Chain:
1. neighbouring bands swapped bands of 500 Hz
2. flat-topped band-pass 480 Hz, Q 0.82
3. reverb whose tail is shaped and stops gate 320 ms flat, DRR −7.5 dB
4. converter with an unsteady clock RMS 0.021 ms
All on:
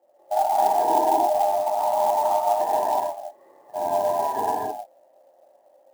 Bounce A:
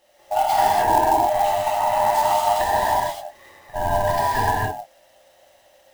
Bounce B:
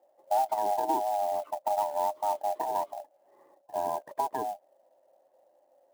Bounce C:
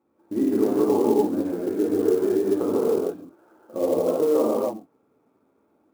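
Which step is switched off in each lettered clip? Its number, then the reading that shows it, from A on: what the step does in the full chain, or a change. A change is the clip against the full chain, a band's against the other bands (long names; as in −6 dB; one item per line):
2, change in integrated loudness +2.5 LU
3, change in momentary loudness spread −3 LU
1, 250 Hz band +20.5 dB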